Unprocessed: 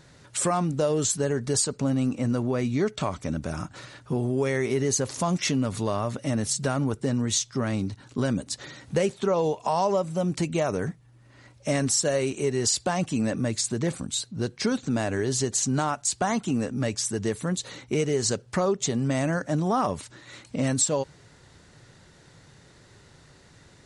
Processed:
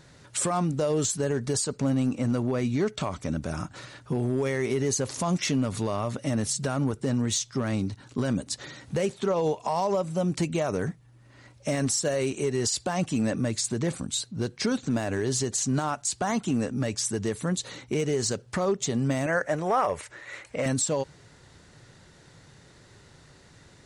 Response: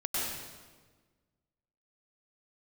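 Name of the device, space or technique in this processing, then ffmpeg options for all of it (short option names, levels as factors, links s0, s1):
limiter into clipper: -filter_complex "[0:a]alimiter=limit=0.141:level=0:latency=1:release=60,asoftclip=type=hard:threshold=0.119,asettb=1/sr,asplit=3[s0][s1][s2];[s0]atrim=end=19.264[s3];[s1]atrim=start=19.26:end=20.66,asetpts=PTS-STARTPTS,afade=t=in:d=0.004:c=qsin,afade=t=out:st=1.396:d=0.004:c=qsin,equalizer=f=125:t=o:w=1:g=-6,equalizer=f=250:t=o:w=1:g=-11,equalizer=f=500:t=o:w=1:g=7,equalizer=f=2000:t=o:w=1:g=9,equalizer=f=4000:t=o:w=1:g=-6[s4];[s2]atrim=start=20.656[s5];[s3][s4]acrossfade=d=0.004:c1=hsin:c2=qsin[s6];[s6][s5]acrossfade=d=0.004:c1=qsin:c2=hsin"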